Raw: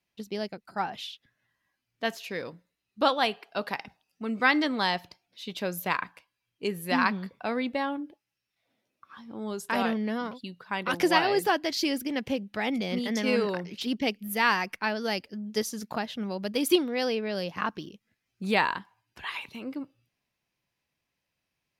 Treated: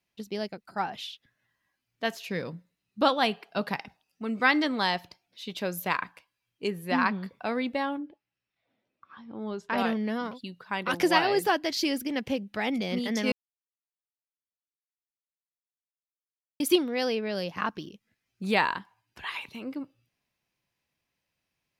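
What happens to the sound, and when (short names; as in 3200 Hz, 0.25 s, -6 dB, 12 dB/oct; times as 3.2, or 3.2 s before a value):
2.28–3.79 bell 160 Hz +9.5 dB 1.1 oct
6.7–7.23 high shelf 4200 Hz -9 dB
7.98–9.78 air absorption 180 m
13.32–16.6 mute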